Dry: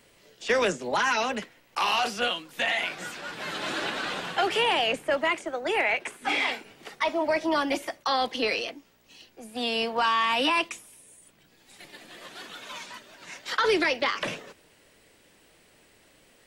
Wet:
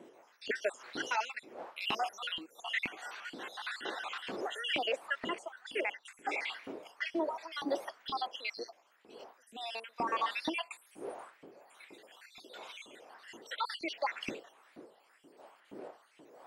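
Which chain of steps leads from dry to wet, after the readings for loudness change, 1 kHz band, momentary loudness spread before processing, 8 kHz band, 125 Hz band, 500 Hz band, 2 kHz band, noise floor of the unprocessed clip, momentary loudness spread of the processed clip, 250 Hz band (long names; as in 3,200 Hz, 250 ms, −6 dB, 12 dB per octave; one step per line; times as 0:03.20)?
−11.0 dB, −10.5 dB, 17 LU, −12.5 dB, −13.0 dB, −11.5 dB, −10.5 dB, −60 dBFS, 19 LU, −10.0 dB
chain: time-frequency cells dropped at random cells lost 57%
wind on the microphone 440 Hz −41 dBFS
auto-filter high-pass saw up 2.1 Hz 250–2,500 Hz
level −8.5 dB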